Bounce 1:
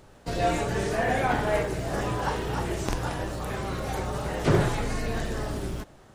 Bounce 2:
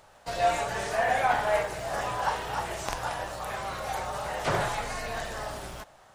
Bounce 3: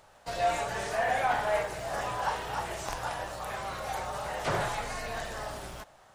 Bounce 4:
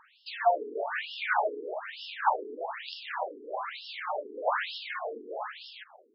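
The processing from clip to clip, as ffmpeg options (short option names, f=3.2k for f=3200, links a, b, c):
-af "lowshelf=f=490:t=q:w=1.5:g=-10.5"
-af "asoftclip=type=tanh:threshold=-14.5dB,volume=-2dB"
-af "afftfilt=real='re*between(b*sr/1024,320*pow(3900/320,0.5+0.5*sin(2*PI*1.1*pts/sr))/1.41,320*pow(3900/320,0.5+0.5*sin(2*PI*1.1*pts/sr))*1.41)':imag='im*between(b*sr/1024,320*pow(3900/320,0.5+0.5*sin(2*PI*1.1*pts/sr))/1.41,320*pow(3900/320,0.5+0.5*sin(2*PI*1.1*pts/sr))*1.41)':win_size=1024:overlap=0.75,volume=7dB"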